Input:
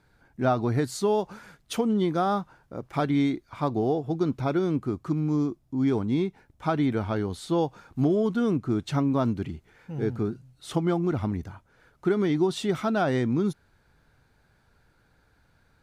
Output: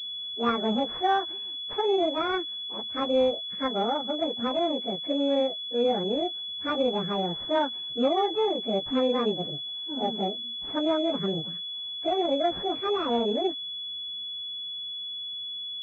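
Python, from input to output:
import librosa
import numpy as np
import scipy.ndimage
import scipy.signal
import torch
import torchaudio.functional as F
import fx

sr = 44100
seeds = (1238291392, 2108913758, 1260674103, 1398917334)

y = fx.pitch_bins(x, sr, semitones=10.5)
y = fx.pwm(y, sr, carrier_hz=3400.0)
y = F.gain(torch.from_numpy(y), 1.0).numpy()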